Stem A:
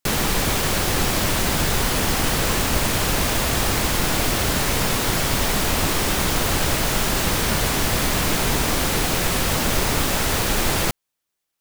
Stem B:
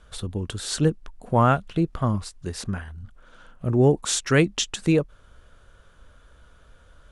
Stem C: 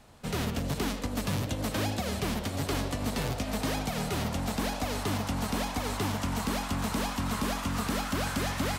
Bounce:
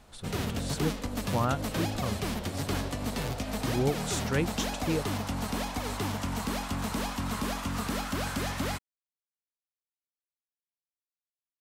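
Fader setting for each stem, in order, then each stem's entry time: muted, −10.5 dB, −1.5 dB; muted, 0.00 s, 0.00 s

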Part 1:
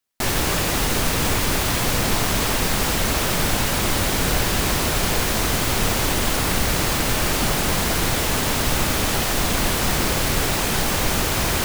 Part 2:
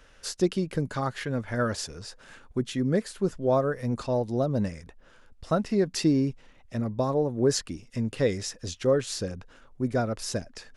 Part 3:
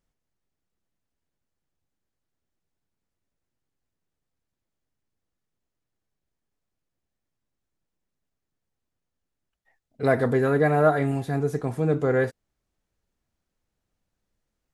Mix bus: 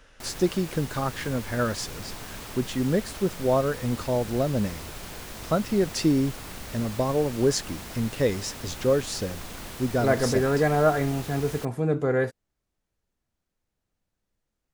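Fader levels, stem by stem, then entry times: −18.5, +1.0, −1.5 decibels; 0.00, 0.00, 0.00 seconds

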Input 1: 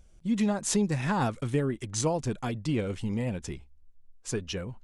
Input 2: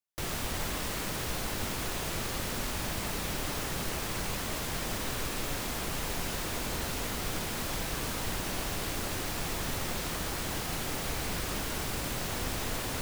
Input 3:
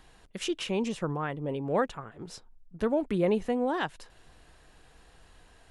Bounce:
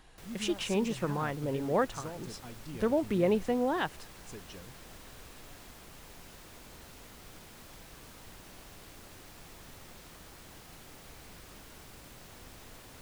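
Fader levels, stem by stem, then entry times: −15.5, −17.0, −1.0 decibels; 0.00, 0.00, 0.00 seconds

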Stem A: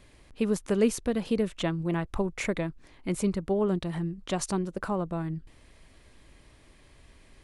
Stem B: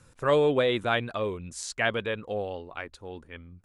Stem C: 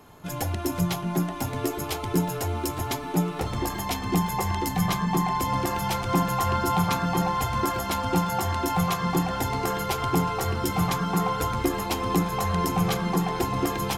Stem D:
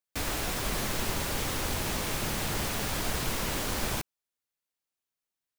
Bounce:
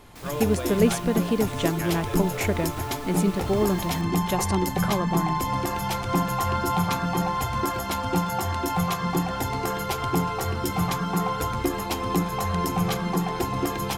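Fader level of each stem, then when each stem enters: +3.0, −10.5, −0.5, −12.0 decibels; 0.00, 0.00, 0.00, 0.00 seconds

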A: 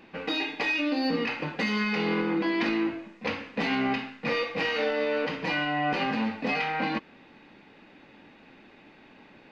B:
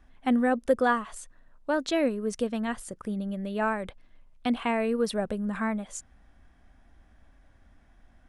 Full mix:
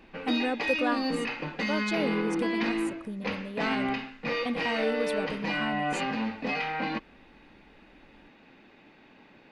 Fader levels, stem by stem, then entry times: −2.5, −5.5 decibels; 0.00, 0.00 seconds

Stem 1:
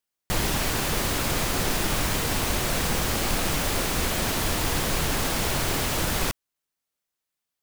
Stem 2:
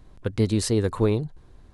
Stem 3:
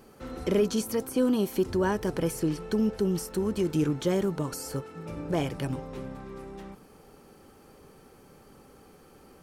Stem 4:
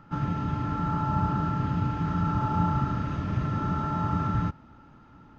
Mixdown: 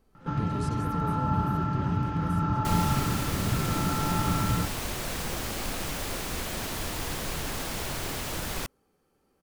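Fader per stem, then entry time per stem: −7.5, −18.0, −17.0, −0.5 decibels; 2.35, 0.00, 0.00, 0.15 seconds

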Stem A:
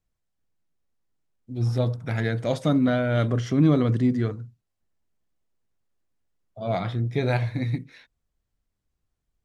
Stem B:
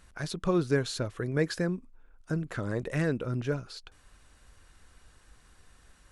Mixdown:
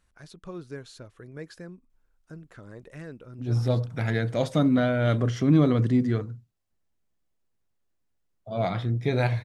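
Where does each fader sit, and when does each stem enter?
−0.5, −12.5 decibels; 1.90, 0.00 seconds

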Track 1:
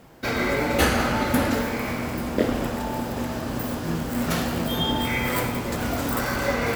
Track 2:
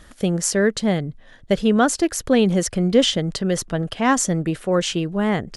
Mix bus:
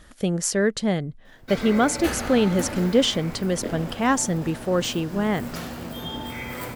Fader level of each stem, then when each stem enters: −8.5, −3.0 decibels; 1.25, 0.00 seconds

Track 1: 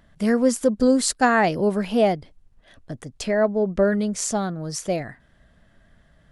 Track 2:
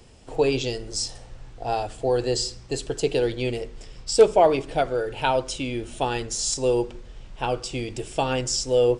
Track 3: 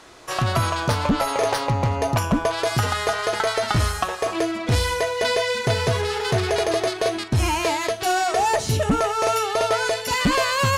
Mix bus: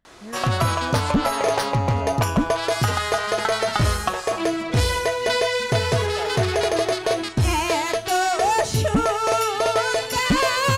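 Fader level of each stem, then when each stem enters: −18.0, −18.0, +0.5 decibels; 0.00, 1.80, 0.05 seconds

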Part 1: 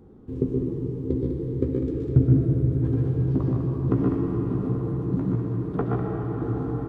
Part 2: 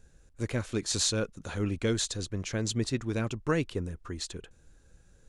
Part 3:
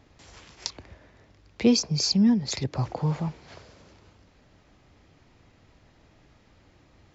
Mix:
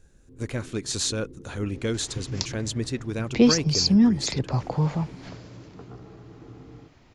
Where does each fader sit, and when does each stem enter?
−18.0, +1.0, +2.5 decibels; 0.00, 0.00, 1.75 seconds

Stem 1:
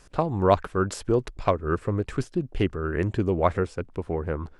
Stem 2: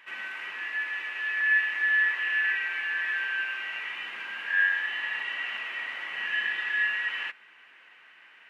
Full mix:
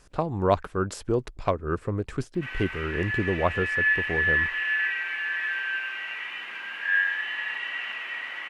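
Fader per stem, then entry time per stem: −2.5, +0.5 decibels; 0.00, 2.35 seconds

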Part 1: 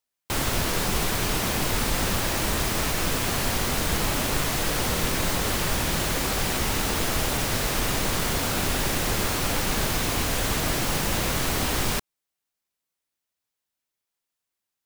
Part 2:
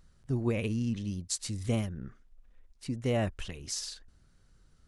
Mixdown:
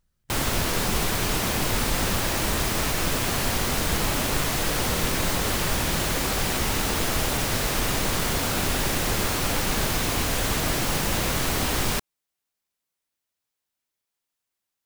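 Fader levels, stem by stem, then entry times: +0.5, −12.5 decibels; 0.00, 0.00 seconds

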